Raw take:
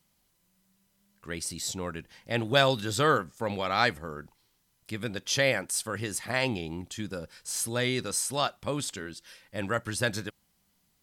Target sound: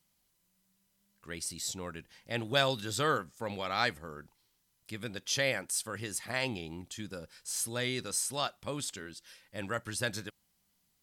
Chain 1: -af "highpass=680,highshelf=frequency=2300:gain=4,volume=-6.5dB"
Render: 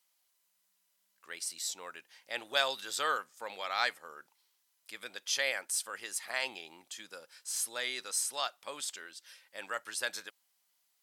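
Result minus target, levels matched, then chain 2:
500 Hz band −5.0 dB
-af "highshelf=frequency=2300:gain=4,volume=-6.5dB"

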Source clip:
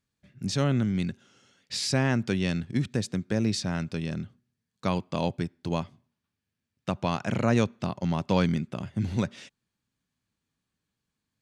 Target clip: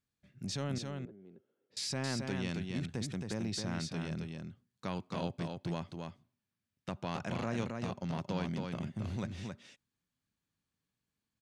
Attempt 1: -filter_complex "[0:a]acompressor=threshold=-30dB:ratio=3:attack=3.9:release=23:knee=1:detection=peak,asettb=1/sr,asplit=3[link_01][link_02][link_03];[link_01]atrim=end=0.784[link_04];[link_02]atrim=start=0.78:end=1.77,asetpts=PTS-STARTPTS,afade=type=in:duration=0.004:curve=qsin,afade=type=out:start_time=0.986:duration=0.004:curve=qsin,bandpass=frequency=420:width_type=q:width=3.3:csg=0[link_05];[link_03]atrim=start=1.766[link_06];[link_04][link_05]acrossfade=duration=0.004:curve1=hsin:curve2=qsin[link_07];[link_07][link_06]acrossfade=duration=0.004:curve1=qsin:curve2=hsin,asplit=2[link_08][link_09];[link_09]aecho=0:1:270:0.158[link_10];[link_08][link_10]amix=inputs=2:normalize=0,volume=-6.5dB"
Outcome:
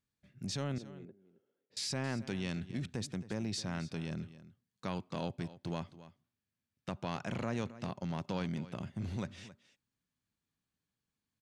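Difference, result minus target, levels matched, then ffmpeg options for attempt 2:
echo-to-direct −11.5 dB
-filter_complex "[0:a]acompressor=threshold=-30dB:ratio=3:attack=3.9:release=23:knee=1:detection=peak,asettb=1/sr,asplit=3[link_01][link_02][link_03];[link_01]atrim=end=0.784[link_04];[link_02]atrim=start=0.78:end=1.77,asetpts=PTS-STARTPTS,afade=type=in:duration=0.004:curve=qsin,afade=type=out:start_time=0.986:duration=0.004:curve=qsin,bandpass=frequency=420:width_type=q:width=3.3:csg=0[link_05];[link_03]atrim=start=1.766[link_06];[link_04][link_05]acrossfade=duration=0.004:curve1=hsin:curve2=qsin[link_07];[link_07][link_06]acrossfade=duration=0.004:curve1=qsin:curve2=hsin,asplit=2[link_08][link_09];[link_09]aecho=0:1:270:0.596[link_10];[link_08][link_10]amix=inputs=2:normalize=0,volume=-6.5dB"

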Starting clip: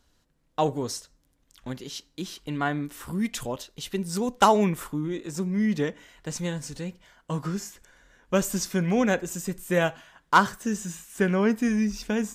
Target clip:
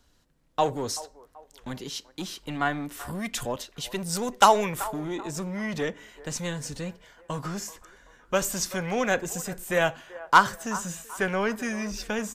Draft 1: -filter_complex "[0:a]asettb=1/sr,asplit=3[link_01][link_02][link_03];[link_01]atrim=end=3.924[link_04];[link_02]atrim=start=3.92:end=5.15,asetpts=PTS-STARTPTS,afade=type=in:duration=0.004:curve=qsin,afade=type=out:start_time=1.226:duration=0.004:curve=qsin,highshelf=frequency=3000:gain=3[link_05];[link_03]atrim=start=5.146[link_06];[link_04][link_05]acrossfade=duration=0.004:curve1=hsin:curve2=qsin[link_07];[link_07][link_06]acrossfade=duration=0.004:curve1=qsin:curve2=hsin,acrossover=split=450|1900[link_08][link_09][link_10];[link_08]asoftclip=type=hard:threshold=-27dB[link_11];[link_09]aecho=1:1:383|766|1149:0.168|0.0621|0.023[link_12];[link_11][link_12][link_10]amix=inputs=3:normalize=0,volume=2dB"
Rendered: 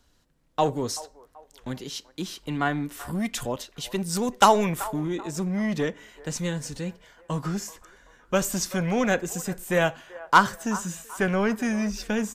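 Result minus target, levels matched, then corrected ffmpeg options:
hard clipping: distortion −5 dB
-filter_complex "[0:a]asettb=1/sr,asplit=3[link_01][link_02][link_03];[link_01]atrim=end=3.924[link_04];[link_02]atrim=start=3.92:end=5.15,asetpts=PTS-STARTPTS,afade=type=in:duration=0.004:curve=qsin,afade=type=out:start_time=1.226:duration=0.004:curve=qsin,highshelf=frequency=3000:gain=3[link_05];[link_03]atrim=start=5.146[link_06];[link_04][link_05]acrossfade=duration=0.004:curve1=hsin:curve2=qsin[link_07];[link_07][link_06]acrossfade=duration=0.004:curve1=qsin:curve2=hsin,acrossover=split=450|1900[link_08][link_09][link_10];[link_08]asoftclip=type=hard:threshold=-34.5dB[link_11];[link_09]aecho=1:1:383|766|1149:0.168|0.0621|0.023[link_12];[link_11][link_12][link_10]amix=inputs=3:normalize=0,volume=2dB"

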